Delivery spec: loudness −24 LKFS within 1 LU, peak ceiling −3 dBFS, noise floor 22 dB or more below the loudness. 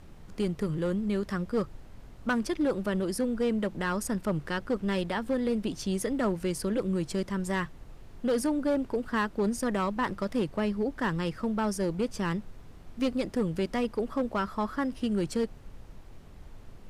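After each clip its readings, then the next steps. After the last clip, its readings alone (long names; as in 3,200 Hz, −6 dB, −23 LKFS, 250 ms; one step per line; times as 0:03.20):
share of clipped samples 1.4%; peaks flattened at −21.5 dBFS; background noise floor −49 dBFS; target noise floor −53 dBFS; integrated loudness −30.5 LKFS; sample peak −21.5 dBFS; target loudness −24.0 LKFS
→ clipped peaks rebuilt −21.5 dBFS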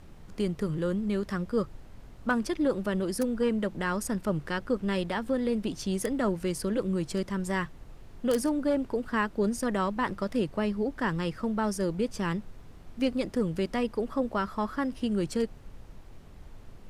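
share of clipped samples 0.0%; background noise floor −49 dBFS; target noise floor −52 dBFS
→ noise reduction from a noise print 6 dB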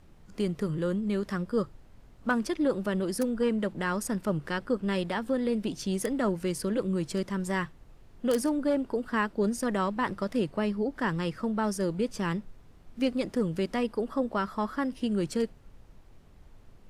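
background noise floor −55 dBFS; integrated loudness −30.0 LKFS; sample peak −12.5 dBFS; target loudness −24.0 LKFS
→ level +6 dB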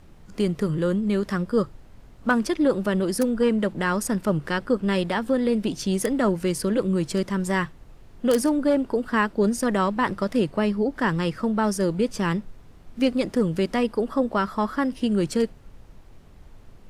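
integrated loudness −24.0 LKFS; sample peak −6.5 dBFS; background noise floor −49 dBFS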